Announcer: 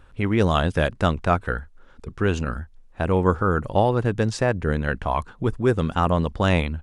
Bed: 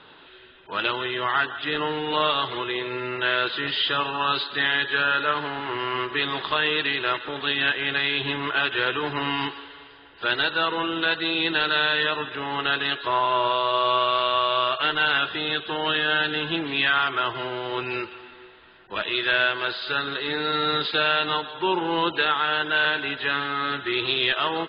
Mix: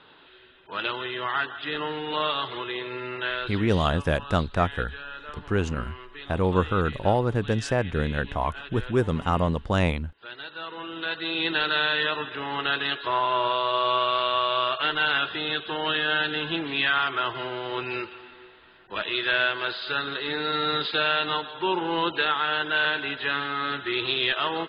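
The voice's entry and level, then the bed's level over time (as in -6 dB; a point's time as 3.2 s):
3.30 s, -3.0 dB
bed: 3.18 s -4 dB
3.99 s -17 dB
10.34 s -17 dB
11.46 s -2 dB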